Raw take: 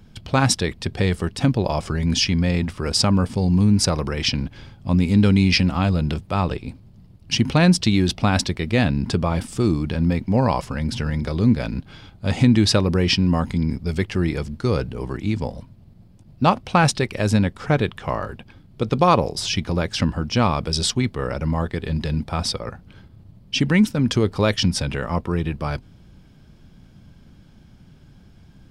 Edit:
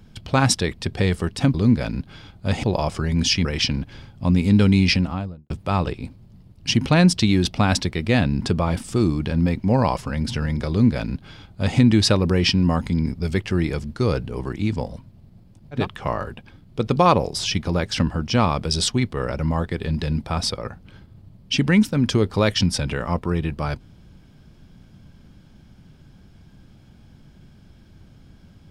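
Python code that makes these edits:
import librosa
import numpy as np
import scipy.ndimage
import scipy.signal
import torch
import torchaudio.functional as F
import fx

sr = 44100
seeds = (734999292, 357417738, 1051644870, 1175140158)

y = fx.studio_fade_out(x, sr, start_s=5.47, length_s=0.67)
y = fx.edit(y, sr, fx.cut(start_s=2.36, length_s=1.73),
    fx.duplicate(start_s=11.33, length_s=1.09, to_s=1.54),
    fx.cut(start_s=16.43, length_s=1.38, crossfade_s=0.16), tone=tone)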